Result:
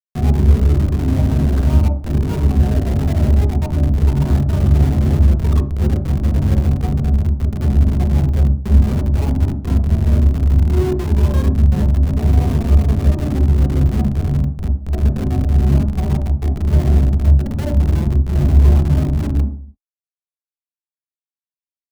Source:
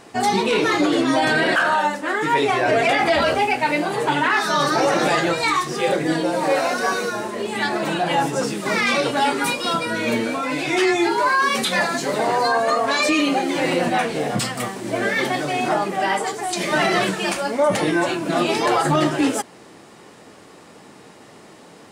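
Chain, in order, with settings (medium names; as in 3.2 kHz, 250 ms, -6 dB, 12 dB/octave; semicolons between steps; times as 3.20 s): low-pass 1.3 kHz 12 dB/octave; hum notches 50/100/150/200/250/300 Hz; compression 3:1, threshold -25 dBFS, peak gain reduction 8.5 dB; Schmitt trigger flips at -22 dBFS; on a send: reverberation RT60 0.50 s, pre-delay 3 ms, DRR 2.5 dB; on the sum: trim -1 dB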